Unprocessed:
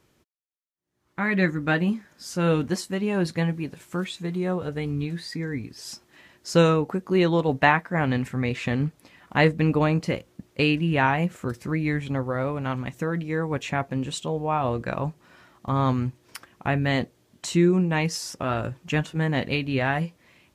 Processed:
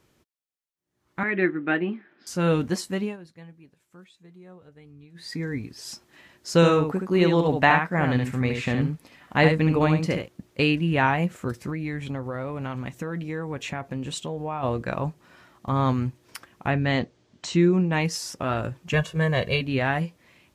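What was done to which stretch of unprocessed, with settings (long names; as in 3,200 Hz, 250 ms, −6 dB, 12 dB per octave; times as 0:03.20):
0:01.23–0:02.27: loudspeaker in its box 290–2,900 Hz, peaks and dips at 350 Hz +9 dB, 530 Hz −8 dB, 990 Hz −7 dB
0:03.01–0:05.30: duck −21 dB, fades 0.16 s
0:06.55–0:10.28: single-tap delay 71 ms −5.5 dB
0:11.69–0:14.63: downward compressor 3 to 1, threshold −27 dBFS
0:16.70–0:17.93: low-pass filter 6,700 Hz 24 dB per octave
0:18.93–0:19.61: comb filter 1.8 ms, depth 85%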